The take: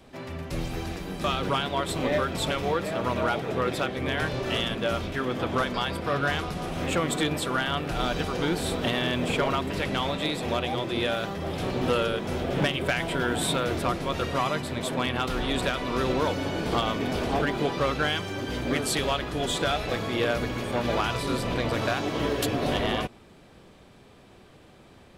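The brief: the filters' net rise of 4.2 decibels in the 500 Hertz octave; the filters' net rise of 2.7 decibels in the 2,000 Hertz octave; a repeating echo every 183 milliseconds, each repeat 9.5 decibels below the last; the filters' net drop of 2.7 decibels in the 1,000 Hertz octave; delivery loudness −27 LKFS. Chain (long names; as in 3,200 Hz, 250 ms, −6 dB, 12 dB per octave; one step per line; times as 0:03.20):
parametric band 500 Hz +7 dB
parametric band 1,000 Hz −8.5 dB
parametric band 2,000 Hz +6 dB
repeating echo 183 ms, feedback 33%, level −9.5 dB
level −2 dB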